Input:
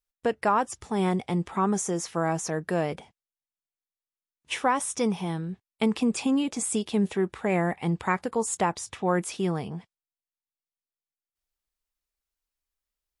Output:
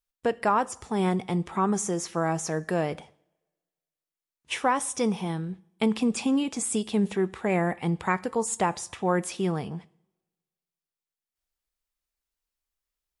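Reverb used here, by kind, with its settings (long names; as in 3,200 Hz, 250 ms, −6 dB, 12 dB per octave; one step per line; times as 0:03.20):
coupled-rooms reverb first 0.61 s, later 1.6 s, from −23 dB, DRR 17.5 dB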